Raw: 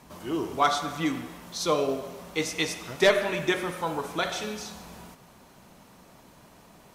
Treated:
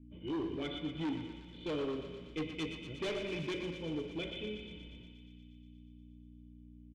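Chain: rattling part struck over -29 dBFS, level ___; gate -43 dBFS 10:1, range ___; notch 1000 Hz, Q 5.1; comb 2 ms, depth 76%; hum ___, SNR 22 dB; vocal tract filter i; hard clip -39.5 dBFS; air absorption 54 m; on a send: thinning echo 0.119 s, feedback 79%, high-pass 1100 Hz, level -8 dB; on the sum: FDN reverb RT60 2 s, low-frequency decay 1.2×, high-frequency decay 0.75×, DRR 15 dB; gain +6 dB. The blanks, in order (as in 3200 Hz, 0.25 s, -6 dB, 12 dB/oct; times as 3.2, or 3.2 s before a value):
-20 dBFS, -22 dB, 60 Hz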